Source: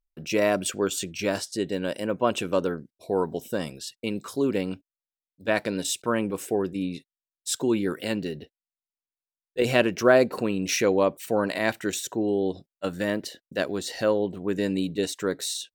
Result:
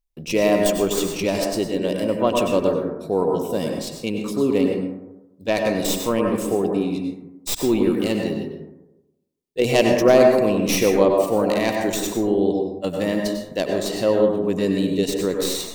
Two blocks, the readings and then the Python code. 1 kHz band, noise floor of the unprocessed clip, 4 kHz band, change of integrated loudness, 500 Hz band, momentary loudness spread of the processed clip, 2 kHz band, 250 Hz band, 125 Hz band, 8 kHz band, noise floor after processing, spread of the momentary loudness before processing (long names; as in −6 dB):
+5.0 dB, below −85 dBFS, +4.5 dB, +6.0 dB, +6.5 dB, 10 LU, +1.0 dB, +6.5 dB, +5.5 dB, +3.0 dB, −57 dBFS, 11 LU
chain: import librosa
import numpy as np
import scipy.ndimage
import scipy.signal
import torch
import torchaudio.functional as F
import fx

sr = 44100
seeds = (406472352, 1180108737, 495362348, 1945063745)

y = fx.tracing_dist(x, sr, depth_ms=0.071)
y = fx.peak_eq(y, sr, hz=1500.0, db=-12.5, octaves=0.49)
y = fx.rev_plate(y, sr, seeds[0], rt60_s=0.99, hf_ratio=0.3, predelay_ms=85, drr_db=1.0)
y = F.gain(torch.from_numpy(y), 4.0).numpy()